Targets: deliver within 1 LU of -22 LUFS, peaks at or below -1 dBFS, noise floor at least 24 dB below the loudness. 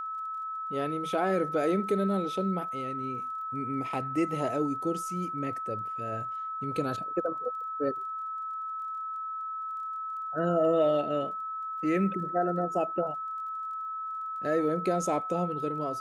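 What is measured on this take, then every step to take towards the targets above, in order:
tick rate 22 per s; steady tone 1.3 kHz; tone level -33 dBFS; loudness -31.0 LUFS; peak level -15.5 dBFS; loudness target -22.0 LUFS
-> de-click; band-stop 1.3 kHz, Q 30; trim +9 dB

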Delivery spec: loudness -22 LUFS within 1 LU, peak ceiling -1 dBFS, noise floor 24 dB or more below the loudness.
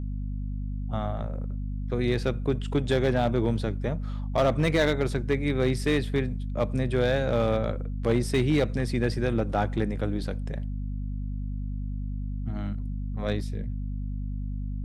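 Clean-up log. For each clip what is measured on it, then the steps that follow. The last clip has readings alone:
clipped samples 0.5%; clipping level -16.0 dBFS; hum 50 Hz; highest harmonic 250 Hz; hum level -29 dBFS; loudness -28.5 LUFS; peak level -16.0 dBFS; loudness target -22.0 LUFS
-> clip repair -16 dBFS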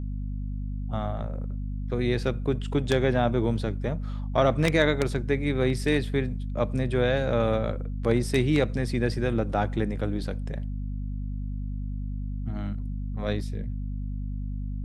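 clipped samples 0.0%; hum 50 Hz; highest harmonic 250 Hz; hum level -29 dBFS
-> de-hum 50 Hz, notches 5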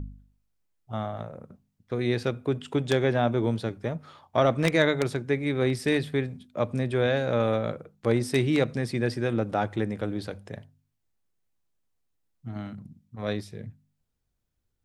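hum not found; loudness -27.5 LUFS; peak level -7.0 dBFS; loudness target -22.0 LUFS
-> trim +5.5 dB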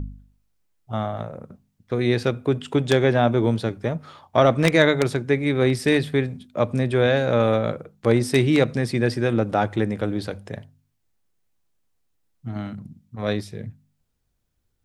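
loudness -22.0 LUFS; peak level -1.5 dBFS; noise floor -72 dBFS

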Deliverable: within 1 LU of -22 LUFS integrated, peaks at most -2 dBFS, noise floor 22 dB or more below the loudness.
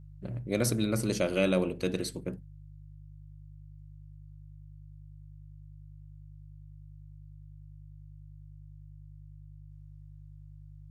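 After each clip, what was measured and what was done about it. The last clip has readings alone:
hum 50 Hz; highest harmonic 150 Hz; hum level -47 dBFS; loudness -30.5 LUFS; peak level -12.0 dBFS; loudness target -22.0 LUFS
-> de-hum 50 Hz, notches 3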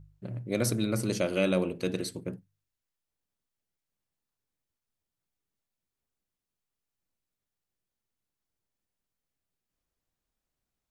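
hum not found; loudness -30.0 LUFS; peak level -12.0 dBFS; loudness target -22.0 LUFS
-> trim +8 dB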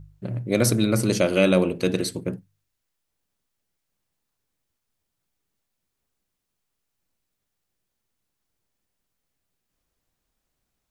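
loudness -22.0 LUFS; peak level -4.0 dBFS; noise floor -80 dBFS

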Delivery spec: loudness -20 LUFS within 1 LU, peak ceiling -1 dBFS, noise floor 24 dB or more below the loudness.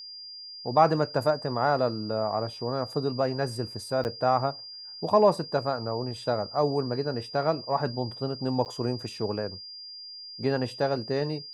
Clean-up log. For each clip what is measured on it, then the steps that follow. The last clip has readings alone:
dropouts 2; longest dropout 9.2 ms; steady tone 4.8 kHz; tone level -40 dBFS; loudness -28.0 LUFS; peak level -7.5 dBFS; loudness target -20.0 LUFS
-> interpolate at 4.04/8.65 s, 9.2 ms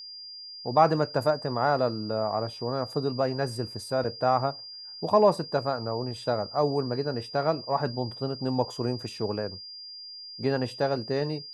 dropouts 0; steady tone 4.8 kHz; tone level -40 dBFS
-> band-stop 4.8 kHz, Q 30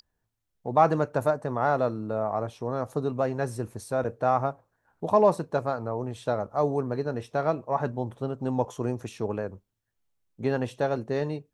steady tone not found; loudness -28.0 LUFS; peak level -7.5 dBFS; loudness target -20.0 LUFS
-> trim +8 dB; peak limiter -1 dBFS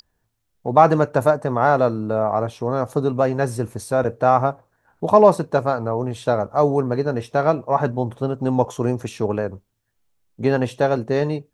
loudness -20.0 LUFS; peak level -1.0 dBFS; noise floor -72 dBFS

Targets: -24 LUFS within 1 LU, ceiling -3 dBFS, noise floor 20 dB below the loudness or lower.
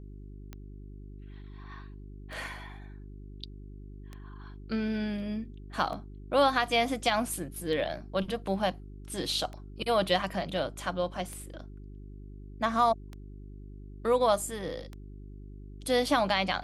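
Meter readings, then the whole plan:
clicks found 9; hum 50 Hz; highest harmonic 400 Hz; hum level -43 dBFS; loudness -30.0 LUFS; peak level -12.0 dBFS; loudness target -24.0 LUFS
-> de-click; de-hum 50 Hz, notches 8; trim +6 dB

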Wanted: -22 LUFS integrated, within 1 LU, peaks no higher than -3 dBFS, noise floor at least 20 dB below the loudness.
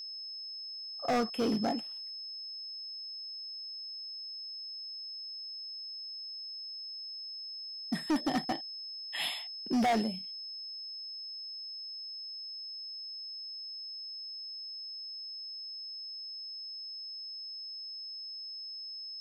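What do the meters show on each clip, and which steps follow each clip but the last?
clipped samples 0.8%; clipping level -25.0 dBFS; steady tone 5.2 kHz; tone level -40 dBFS; loudness -37.0 LUFS; peak level -25.0 dBFS; loudness target -22.0 LUFS
-> clip repair -25 dBFS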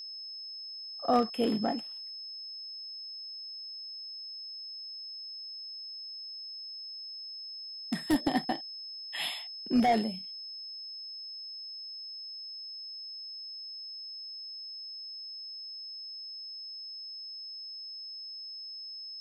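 clipped samples 0.0%; steady tone 5.2 kHz; tone level -40 dBFS
-> band-stop 5.2 kHz, Q 30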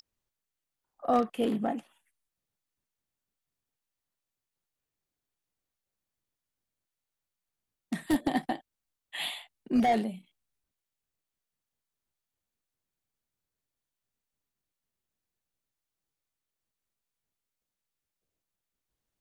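steady tone not found; loudness -30.5 LUFS; peak level -15.5 dBFS; loudness target -22.0 LUFS
-> trim +8.5 dB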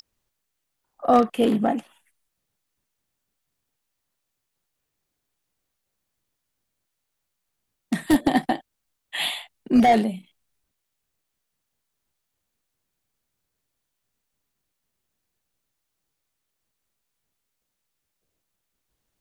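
loudness -22.0 LUFS; peak level -7.0 dBFS; noise floor -80 dBFS

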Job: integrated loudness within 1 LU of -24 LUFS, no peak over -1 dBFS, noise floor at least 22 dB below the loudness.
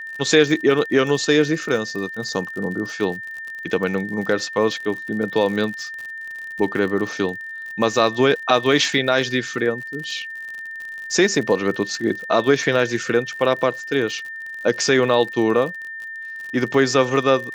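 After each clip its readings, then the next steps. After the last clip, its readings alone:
tick rate 53 per s; steady tone 1.8 kHz; tone level -30 dBFS; loudness -20.5 LUFS; peak level -1.5 dBFS; loudness target -24.0 LUFS
-> de-click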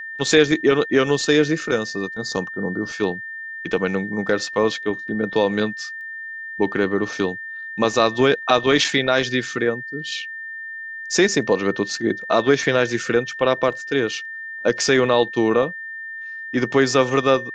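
tick rate 0.057 per s; steady tone 1.8 kHz; tone level -30 dBFS
-> band-stop 1.8 kHz, Q 30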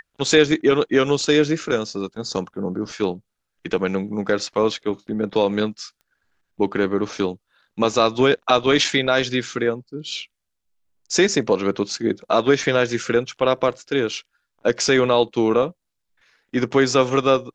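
steady tone not found; loudness -20.5 LUFS; peak level -2.0 dBFS; loudness target -24.0 LUFS
-> trim -3.5 dB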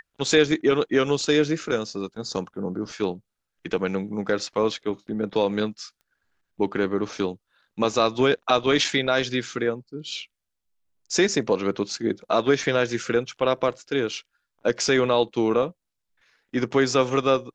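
loudness -24.0 LUFS; peak level -5.5 dBFS; noise floor -81 dBFS

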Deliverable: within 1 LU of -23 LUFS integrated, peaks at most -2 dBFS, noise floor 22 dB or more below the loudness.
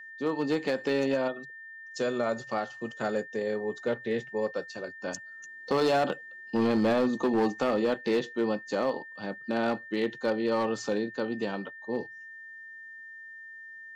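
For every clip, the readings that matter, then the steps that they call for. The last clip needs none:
clipped samples 1.2%; clipping level -20.0 dBFS; steady tone 1.8 kHz; tone level -43 dBFS; loudness -30.0 LUFS; peak level -20.0 dBFS; loudness target -23.0 LUFS
-> clip repair -20 dBFS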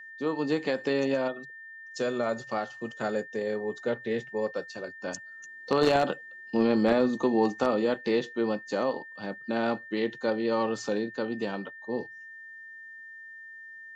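clipped samples 0.0%; steady tone 1.8 kHz; tone level -43 dBFS
-> band-stop 1.8 kHz, Q 30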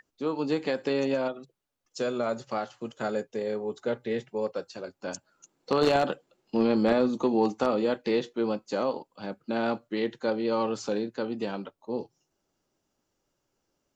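steady tone not found; loudness -29.5 LUFS; peak level -10.5 dBFS; loudness target -23.0 LUFS
-> trim +6.5 dB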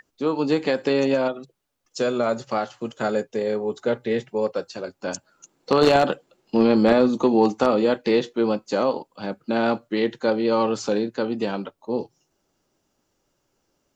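loudness -23.0 LUFS; peak level -4.0 dBFS; noise floor -73 dBFS

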